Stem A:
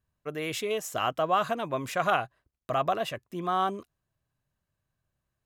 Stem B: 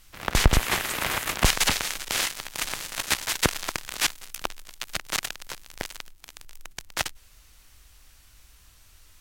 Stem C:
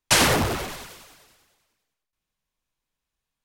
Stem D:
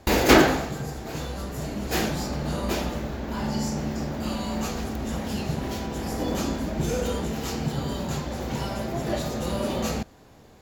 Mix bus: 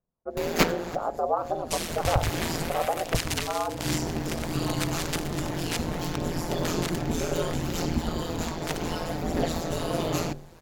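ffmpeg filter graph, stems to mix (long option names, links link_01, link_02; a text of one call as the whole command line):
ffmpeg -i stem1.wav -i stem2.wav -i stem3.wav -i stem4.wav -filter_complex "[0:a]lowpass=frequency=1300:width=0.5412,lowpass=frequency=1300:width=1.3066,equalizer=frequency=530:width_type=o:width=1.6:gain=14,volume=-7dB,asplit=2[link_01][link_02];[1:a]adelay=1700,volume=-6dB[link_03];[2:a]equalizer=frequency=1100:width_type=o:width=2.2:gain=-9,adelay=1600,volume=-9.5dB[link_04];[3:a]adelay=300,volume=2.5dB[link_05];[link_02]apad=whole_len=481440[link_06];[link_05][link_06]sidechaincompress=threshold=-40dB:ratio=10:attack=38:release=182[link_07];[link_01][link_03][link_04][link_07]amix=inputs=4:normalize=0,bandreject=frequency=62.77:width_type=h:width=4,bandreject=frequency=125.54:width_type=h:width=4,bandreject=frequency=188.31:width_type=h:width=4,bandreject=frequency=251.08:width_type=h:width=4,bandreject=frequency=313.85:width_type=h:width=4,bandreject=frequency=376.62:width_type=h:width=4,bandreject=frequency=439.39:width_type=h:width=4,bandreject=frequency=502.16:width_type=h:width=4,bandreject=frequency=564.93:width_type=h:width=4,bandreject=frequency=627.7:width_type=h:width=4,bandreject=frequency=690.47:width_type=h:width=4,bandreject=frequency=753.24:width_type=h:width=4,bandreject=frequency=816.01:width_type=h:width=4,bandreject=frequency=878.78:width_type=h:width=4,bandreject=frequency=941.55:width_type=h:width=4,aphaser=in_gain=1:out_gain=1:delay=4.2:decay=0.31:speed=0.64:type=triangular,aeval=exprs='val(0)*sin(2*PI*83*n/s)':channel_layout=same" out.wav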